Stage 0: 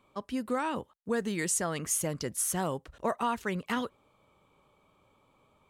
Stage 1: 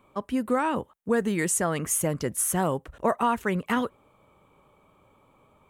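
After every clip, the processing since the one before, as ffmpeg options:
ffmpeg -i in.wav -af "equalizer=frequency=4700:width_type=o:width=1.2:gain=-9.5,volume=6.5dB" out.wav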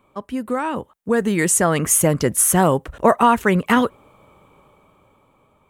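ffmpeg -i in.wav -af "dynaudnorm=framelen=380:gausssize=7:maxgain=11dB,volume=1dB" out.wav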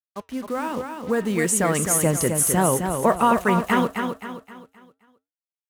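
ffmpeg -i in.wav -filter_complex "[0:a]acrusher=bits=5:mix=0:aa=0.5,flanger=delay=4.1:depth=2.2:regen=-85:speed=1.2:shape=sinusoidal,asplit=2[link_01][link_02];[link_02]aecho=0:1:262|524|786|1048|1310:0.501|0.195|0.0762|0.0297|0.0116[link_03];[link_01][link_03]amix=inputs=2:normalize=0" out.wav

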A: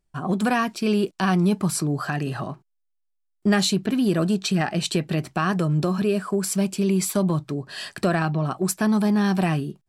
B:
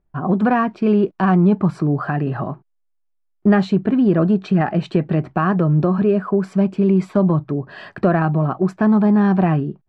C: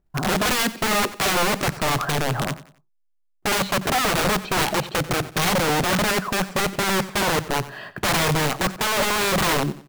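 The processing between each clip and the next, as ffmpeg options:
ffmpeg -i in.wav -af "lowpass=1400,volume=6dB" out.wav
ffmpeg -i in.wav -af "acrusher=bits=6:mode=log:mix=0:aa=0.000001,aeval=exprs='(mod(6.31*val(0)+1,2)-1)/6.31':channel_layout=same,aecho=1:1:91|182|273:0.15|0.0524|0.0183" out.wav

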